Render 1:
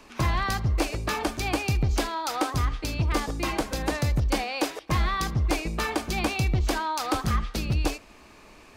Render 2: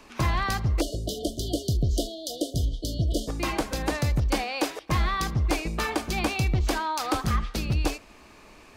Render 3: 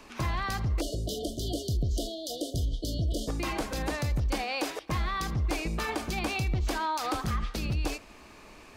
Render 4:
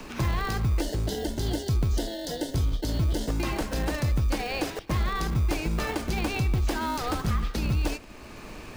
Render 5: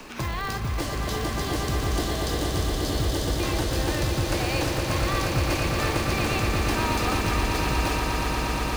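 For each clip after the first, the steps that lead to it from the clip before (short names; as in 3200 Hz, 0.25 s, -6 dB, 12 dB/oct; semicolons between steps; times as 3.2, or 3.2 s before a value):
spectral delete 0.81–3.28, 730–2900 Hz
limiter -22.5 dBFS, peak gain reduction 7 dB
in parallel at -4 dB: sample-rate reducer 1200 Hz, jitter 0%; on the sum: three-band squash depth 40%
low shelf 330 Hz -6.5 dB; swelling echo 0.118 s, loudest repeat 8, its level -7.5 dB; gain +1.5 dB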